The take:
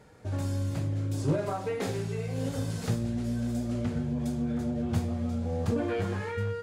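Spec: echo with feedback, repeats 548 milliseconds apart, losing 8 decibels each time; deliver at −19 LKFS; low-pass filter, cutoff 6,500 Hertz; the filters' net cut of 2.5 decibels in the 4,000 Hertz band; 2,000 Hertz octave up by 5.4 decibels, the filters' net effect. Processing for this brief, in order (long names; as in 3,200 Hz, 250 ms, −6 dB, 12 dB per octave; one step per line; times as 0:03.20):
low-pass filter 6,500 Hz
parametric band 2,000 Hz +8 dB
parametric band 4,000 Hz −5.5 dB
repeating echo 548 ms, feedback 40%, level −8 dB
level +11.5 dB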